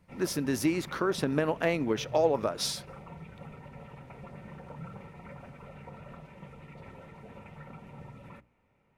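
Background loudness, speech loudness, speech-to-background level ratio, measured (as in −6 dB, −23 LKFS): −47.5 LKFS, −29.5 LKFS, 18.0 dB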